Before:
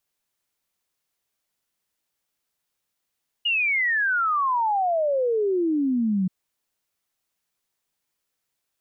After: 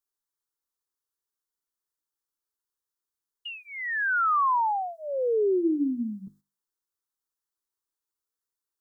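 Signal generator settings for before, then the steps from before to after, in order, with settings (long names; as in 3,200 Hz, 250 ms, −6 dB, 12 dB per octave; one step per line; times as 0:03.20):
exponential sine sweep 2,900 Hz → 180 Hz 2.83 s −19.5 dBFS
mains-hum notches 50/100/150/200/250/300/350 Hz
noise gate −39 dBFS, range −9 dB
phaser with its sweep stopped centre 650 Hz, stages 6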